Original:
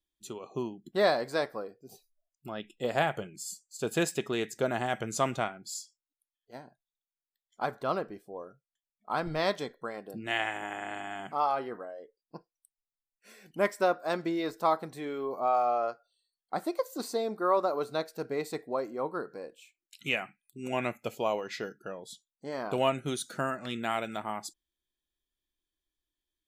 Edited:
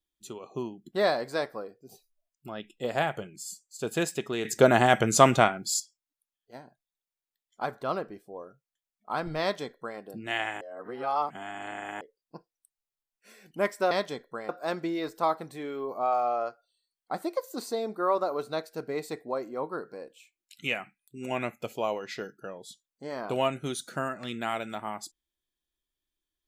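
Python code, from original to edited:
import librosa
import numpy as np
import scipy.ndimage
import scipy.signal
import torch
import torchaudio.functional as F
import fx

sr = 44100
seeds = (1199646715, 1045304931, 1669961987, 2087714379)

y = fx.edit(x, sr, fx.clip_gain(start_s=4.45, length_s=1.35, db=10.5),
    fx.duplicate(start_s=9.41, length_s=0.58, to_s=13.91),
    fx.reverse_span(start_s=10.61, length_s=1.4), tone=tone)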